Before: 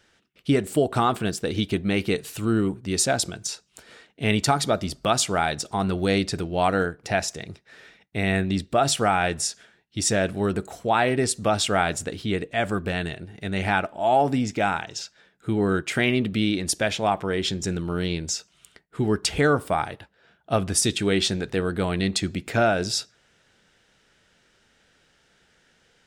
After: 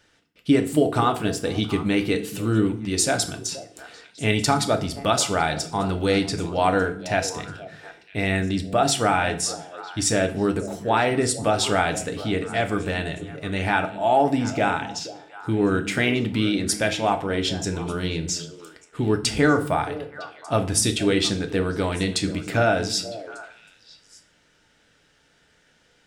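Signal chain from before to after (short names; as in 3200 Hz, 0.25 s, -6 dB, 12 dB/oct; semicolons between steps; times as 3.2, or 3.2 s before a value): delay with a stepping band-pass 0.239 s, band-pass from 170 Hz, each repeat 1.4 oct, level -8 dB; FDN reverb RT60 0.5 s, low-frequency decay 1.1×, high-frequency decay 0.85×, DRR 6 dB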